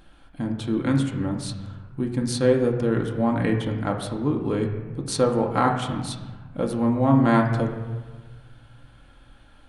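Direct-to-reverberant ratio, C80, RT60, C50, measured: 1.0 dB, 8.5 dB, 1.3 s, 6.5 dB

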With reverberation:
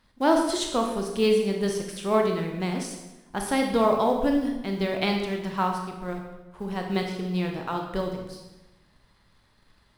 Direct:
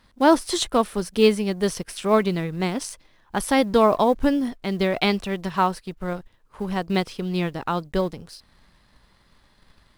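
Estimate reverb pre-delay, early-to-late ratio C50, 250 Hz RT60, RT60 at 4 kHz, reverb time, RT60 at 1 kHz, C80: 23 ms, 4.5 dB, 1.3 s, 0.90 s, 1.0 s, 1.0 s, 7.0 dB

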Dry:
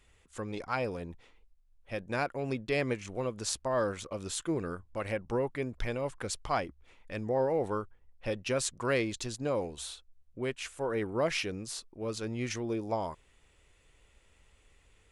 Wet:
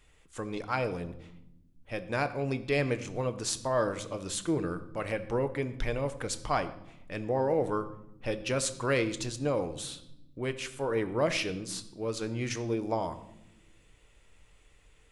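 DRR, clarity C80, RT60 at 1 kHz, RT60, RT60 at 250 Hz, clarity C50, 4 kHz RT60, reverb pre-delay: 10.0 dB, 16.5 dB, 0.75 s, 0.85 s, 1.7 s, 14.5 dB, 0.65 s, 6 ms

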